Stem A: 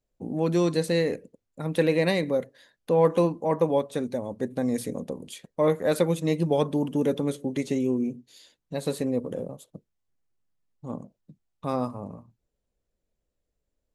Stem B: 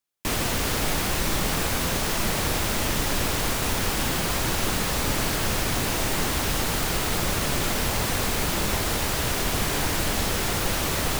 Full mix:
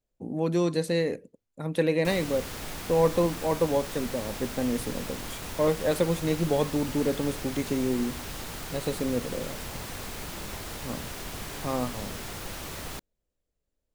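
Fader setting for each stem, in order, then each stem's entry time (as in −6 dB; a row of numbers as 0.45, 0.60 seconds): −2.0, −12.5 decibels; 0.00, 1.80 seconds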